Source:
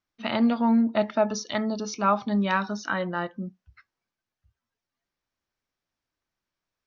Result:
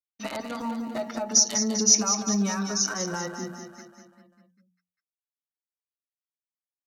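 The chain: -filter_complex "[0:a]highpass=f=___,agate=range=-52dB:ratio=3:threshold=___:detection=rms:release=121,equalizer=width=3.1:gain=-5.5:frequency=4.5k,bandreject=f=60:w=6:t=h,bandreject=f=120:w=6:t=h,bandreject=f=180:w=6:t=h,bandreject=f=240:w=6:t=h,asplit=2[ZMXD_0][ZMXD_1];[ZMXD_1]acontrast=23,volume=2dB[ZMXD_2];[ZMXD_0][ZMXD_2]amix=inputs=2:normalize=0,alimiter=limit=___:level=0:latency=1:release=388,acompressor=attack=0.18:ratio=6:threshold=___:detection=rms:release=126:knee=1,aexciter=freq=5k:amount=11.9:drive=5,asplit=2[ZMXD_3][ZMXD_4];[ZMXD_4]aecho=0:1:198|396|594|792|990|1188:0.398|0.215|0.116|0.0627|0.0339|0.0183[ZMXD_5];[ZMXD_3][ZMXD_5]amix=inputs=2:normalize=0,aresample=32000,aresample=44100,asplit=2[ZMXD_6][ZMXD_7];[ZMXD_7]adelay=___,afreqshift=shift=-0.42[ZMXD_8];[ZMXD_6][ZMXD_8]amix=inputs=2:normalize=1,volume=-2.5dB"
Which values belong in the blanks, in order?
100, -49dB, -9dB, -18dB, 7.1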